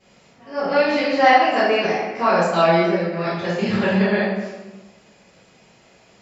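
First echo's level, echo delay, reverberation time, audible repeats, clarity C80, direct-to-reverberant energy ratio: none, none, 1.1 s, none, 2.0 dB, -15.0 dB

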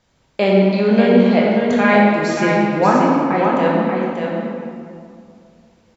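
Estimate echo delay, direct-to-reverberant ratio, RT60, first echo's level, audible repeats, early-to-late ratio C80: 0.585 s, -5.0 dB, 2.4 s, -5.0 dB, 1, -2.0 dB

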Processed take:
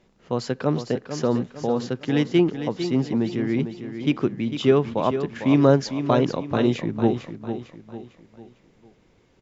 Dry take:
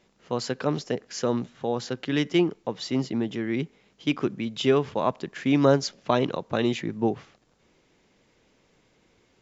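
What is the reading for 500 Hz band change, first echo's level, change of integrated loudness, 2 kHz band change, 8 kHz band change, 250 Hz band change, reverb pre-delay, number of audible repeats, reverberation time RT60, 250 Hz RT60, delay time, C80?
+3.5 dB, -9.5 dB, +3.5 dB, 0.0 dB, n/a, +4.5 dB, none, 4, none, none, 0.451 s, none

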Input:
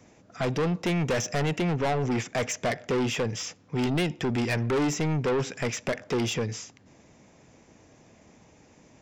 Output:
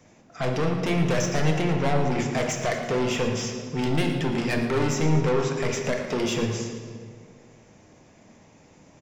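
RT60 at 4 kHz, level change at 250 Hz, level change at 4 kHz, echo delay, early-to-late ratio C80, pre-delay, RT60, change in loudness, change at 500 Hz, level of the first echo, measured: 1.2 s, +2.5 dB, +2.0 dB, 0.114 s, 5.0 dB, 3 ms, 1.9 s, +2.5 dB, +3.0 dB, -12.0 dB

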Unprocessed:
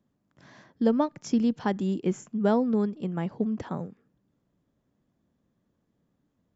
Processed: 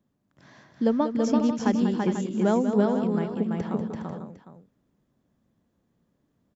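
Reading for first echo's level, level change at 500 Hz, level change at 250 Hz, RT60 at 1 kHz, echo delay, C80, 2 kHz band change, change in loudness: -9.5 dB, +3.0 dB, +2.5 dB, none, 0.192 s, none, +2.5 dB, +2.5 dB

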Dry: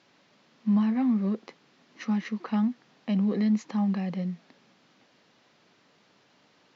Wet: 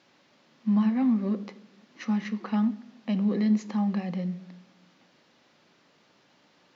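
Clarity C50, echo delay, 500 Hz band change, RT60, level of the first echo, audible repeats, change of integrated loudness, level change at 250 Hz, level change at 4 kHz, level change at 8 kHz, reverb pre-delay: 16.5 dB, none, +0.5 dB, 0.80 s, none, none, +0.5 dB, +0.5 dB, 0.0 dB, n/a, 3 ms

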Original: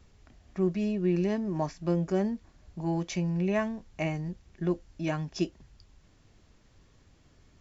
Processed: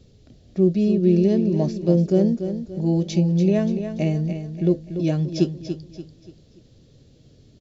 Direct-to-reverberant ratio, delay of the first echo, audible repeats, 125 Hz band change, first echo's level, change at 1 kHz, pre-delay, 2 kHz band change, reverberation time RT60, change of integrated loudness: none, 0.289 s, 4, +11.0 dB, -9.0 dB, -2.5 dB, none, -2.5 dB, none, +10.0 dB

